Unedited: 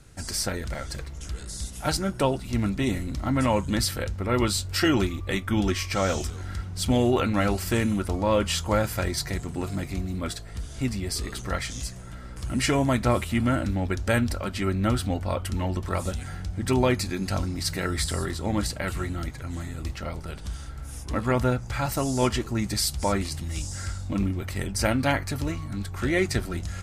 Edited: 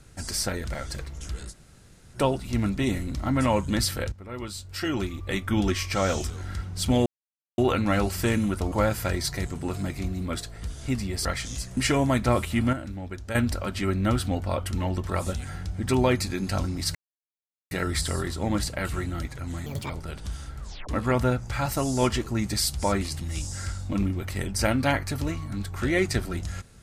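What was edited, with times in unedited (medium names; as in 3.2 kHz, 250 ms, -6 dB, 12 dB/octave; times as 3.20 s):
1.51–2.16 s: room tone, crossfade 0.06 s
4.12–5.45 s: fade in quadratic, from -13.5 dB
7.06 s: insert silence 0.52 s
8.20–8.65 s: delete
11.18–11.50 s: delete
12.02–12.56 s: delete
13.52–14.14 s: gain -9 dB
17.74 s: insert silence 0.76 s
19.69–20.10 s: speed 172%
20.79 s: tape stop 0.30 s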